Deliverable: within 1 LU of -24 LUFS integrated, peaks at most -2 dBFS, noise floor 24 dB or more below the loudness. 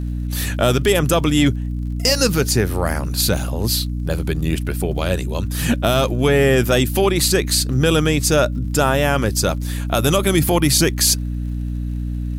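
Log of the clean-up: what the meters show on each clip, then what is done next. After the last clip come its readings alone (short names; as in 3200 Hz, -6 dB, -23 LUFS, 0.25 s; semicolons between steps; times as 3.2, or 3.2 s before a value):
ticks 43/s; hum 60 Hz; harmonics up to 300 Hz; hum level -21 dBFS; loudness -18.0 LUFS; peak -2.5 dBFS; loudness target -24.0 LUFS
-> de-click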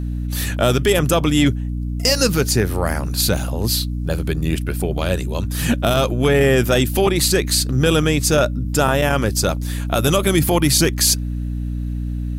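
ticks 1.1/s; hum 60 Hz; harmonics up to 300 Hz; hum level -21 dBFS
-> de-hum 60 Hz, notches 5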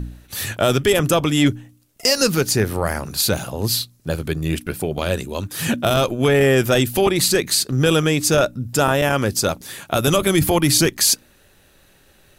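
hum none; loudness -18.5 LUFS; peak -3.0 dBFS; loudness target -24.0 LUFS
-> gain -5.5 dB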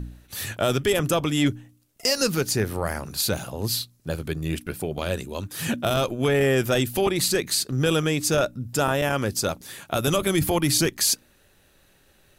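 loudness -24.0 LUFS; peak -8.5 dBFS; noise floor -60 dBFS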